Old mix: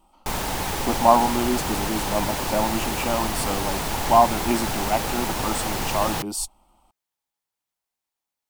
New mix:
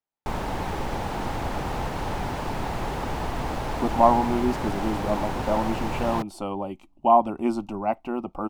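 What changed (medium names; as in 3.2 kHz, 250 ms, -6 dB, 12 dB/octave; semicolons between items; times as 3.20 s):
speech: entry +2.95 s; master: add low-pass 1.2 kHz 6 dB/octave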